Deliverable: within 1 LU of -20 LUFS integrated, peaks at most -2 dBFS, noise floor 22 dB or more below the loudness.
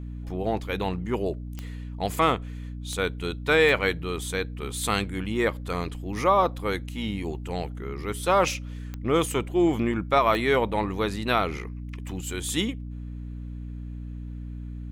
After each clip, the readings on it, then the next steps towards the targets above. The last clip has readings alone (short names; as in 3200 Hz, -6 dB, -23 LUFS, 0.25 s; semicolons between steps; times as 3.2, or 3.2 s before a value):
clicks 5; hum 60 Hz; harmonics up to 300 Hz; hum level -33 dBFS; loudness -26.5 LUFS; peak -9.5 dBFS; loudness target -20.0 LUFS
-> de-click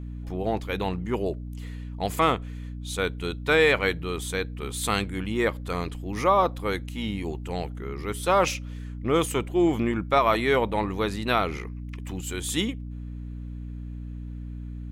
clicks 0; hum 60 Hz; harmonics up to 300 Hz; hum level -33 dBFS
-> notches 60/120/180/240/300 Hz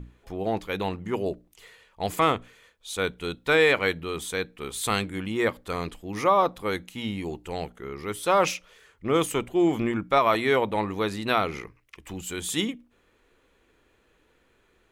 hum none; loudness -26.5 LUFS; peak -9.0 dBFS; loudness target -20.0 LUFS
-> gain +6.5 dB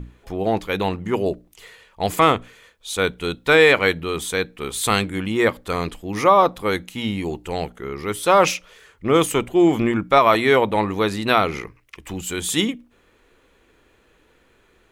loudness -20.0 LUFS; peak -2.5 dBFS; noise floor -59 dBFS